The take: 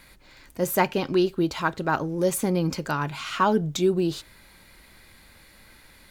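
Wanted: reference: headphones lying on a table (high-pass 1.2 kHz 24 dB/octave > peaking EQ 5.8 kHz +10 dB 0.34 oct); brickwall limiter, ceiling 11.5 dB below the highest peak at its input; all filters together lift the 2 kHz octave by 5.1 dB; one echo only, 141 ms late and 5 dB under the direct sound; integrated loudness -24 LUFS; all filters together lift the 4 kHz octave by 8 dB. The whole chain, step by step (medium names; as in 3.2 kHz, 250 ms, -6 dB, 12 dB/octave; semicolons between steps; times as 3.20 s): peaking EQ 2 kHz +6 dB; peaking EQ 4 kHz +6.5 dB; peak limiter -15.5 dBFS; high-pass 1.2 kHz 24 dB/octave; peaking EQ 5.8 kHz +10 dB 0.34 oct; delay 141 ms -5 dB; trim +5 dB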